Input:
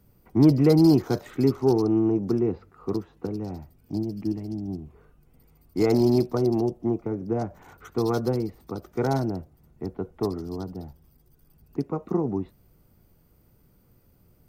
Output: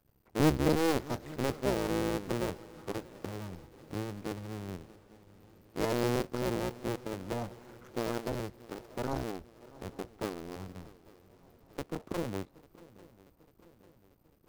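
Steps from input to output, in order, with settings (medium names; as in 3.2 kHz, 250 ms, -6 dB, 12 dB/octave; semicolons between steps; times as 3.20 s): cycle switcher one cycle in 2, muted; shuffle delay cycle 846 ms, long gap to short 3:1, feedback 55%, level -21 dB; trim -7 dB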